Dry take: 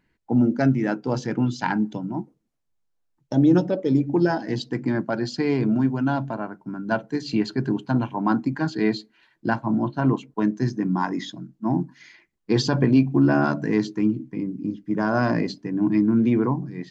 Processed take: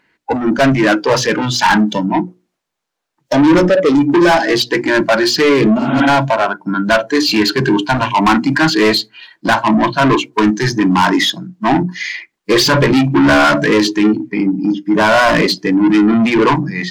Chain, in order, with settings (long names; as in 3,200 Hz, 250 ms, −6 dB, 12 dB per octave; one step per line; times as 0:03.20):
mains-hum notches 60/120/180/240/300/360 Hz
mid-hump overdrive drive 30 dB, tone 4,400 Hz, clips at −6 dBFS
noise reduction from a noise print of the clip's start 12 dB
healed spectral selection 0:05.81–0:06.03, 220–3,900 Hz both
level +4 dB